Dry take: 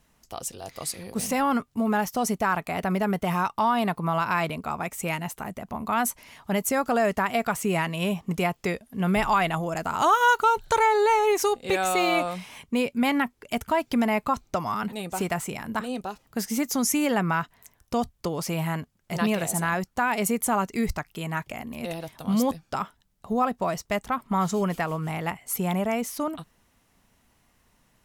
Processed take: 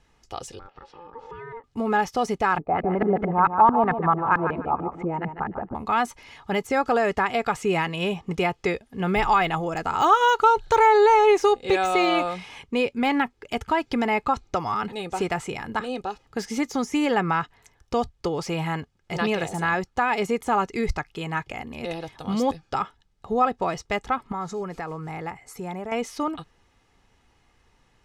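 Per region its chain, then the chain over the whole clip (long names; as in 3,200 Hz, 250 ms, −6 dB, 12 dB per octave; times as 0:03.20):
0:00.59–0:01.64: head-to-tape spacing loss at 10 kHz 43 dB + downward compressor 3 to 1, threshold −41 dBFS + ring modulation 690 Hz
0:02.58–0:05.75: auto-filter low-pass saw up 4.5 Hz 220–1,800 Hz + repeating echo 148 ms, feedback 22%, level −9 dB
0:24.32–0:25.92: parametric band 3,100 Hz −10 dB 0.48 octaves + downward compressor 2 to 1, threshold −35 dBFS
whole clip: low-pass filter 5,500 Hz 12 dB per octave; comb filter 2.4 ms, depth 44%; de-essing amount 80%; level +2 dB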